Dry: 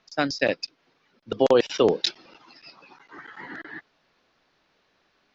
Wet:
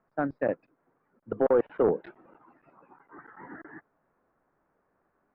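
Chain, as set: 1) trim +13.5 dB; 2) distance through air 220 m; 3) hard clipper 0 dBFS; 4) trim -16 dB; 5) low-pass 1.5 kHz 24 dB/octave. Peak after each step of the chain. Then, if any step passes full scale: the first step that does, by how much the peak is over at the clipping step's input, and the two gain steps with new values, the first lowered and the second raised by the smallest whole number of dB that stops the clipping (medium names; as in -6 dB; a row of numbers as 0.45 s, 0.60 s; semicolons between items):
+6.5 dBFS, +5.5 dBFS, 0.0 dBFS, -16.0 dBFS, -15.0 dBFS; step 1, 5.5 dB; step 1 +7.5 dB, step 4 -10 dB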